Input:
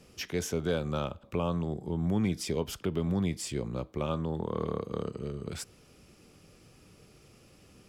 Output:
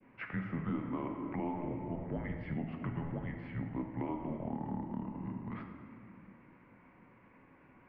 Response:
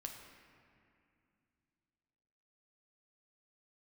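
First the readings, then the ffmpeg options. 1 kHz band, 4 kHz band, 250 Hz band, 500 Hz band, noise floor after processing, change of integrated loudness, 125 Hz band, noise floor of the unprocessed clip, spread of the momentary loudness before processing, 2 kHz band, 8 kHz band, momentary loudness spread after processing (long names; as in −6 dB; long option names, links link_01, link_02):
−3.0 dB, below −20 dB, −4.5 dB, −11.0 dB, −62 dBFS, −6.5 dB, −6.5 dB, −59 dBFS, 8 LU, −3.5 dB, below −40 dB, 14 LU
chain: -filter_complex "[0:a]adynamicequalizer=threshold=0.00316:dfrequency=1600:dqfactor=0.74:tfrequency=1600:tqfactor=0.74:attack=5:release=100:ratio=0.375:range=3.5:mode=cutabove:tftype=bell,highpass=frequency=450:width_type=q:width=0.5412,highpass=frequency=450:width_type=q:width=1.307,lowpass=frequency=2300:width_type=q:width=0.5176,lowpass=frequency=2300:width_type=q:width=0.7071,lowpass=frequency=2300:width_type=q:width=1.932,afreqshift=-250[link_01];[1:a]atrim=start_sample=2205[link_02];[link_01][link_02]afir=irnorm=-1:irlink=0,alimiter=level_in=10.5dB:limit=-24dB:level=0:latency=1:release=294,volume=-10.5dB,volume=7dB"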